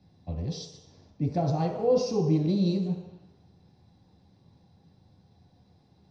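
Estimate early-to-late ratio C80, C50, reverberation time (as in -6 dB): 6.5 dB, 4.5 dB, 1.0 s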